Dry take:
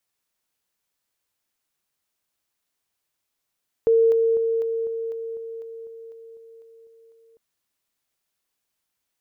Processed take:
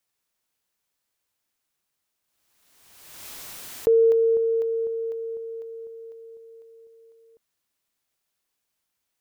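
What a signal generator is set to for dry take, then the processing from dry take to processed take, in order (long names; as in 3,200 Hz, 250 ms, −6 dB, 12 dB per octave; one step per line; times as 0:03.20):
level staircase 455 Hz −13.5 dBFS, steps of −3 dB, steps 14, 0.25 s 0.00 s
background raised ahead of every attack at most 38 dB per second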